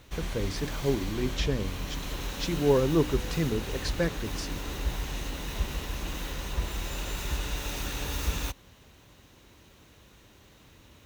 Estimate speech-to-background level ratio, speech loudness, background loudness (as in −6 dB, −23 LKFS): 5.0 dB, −30.0 LKFS, −35.0 LKFS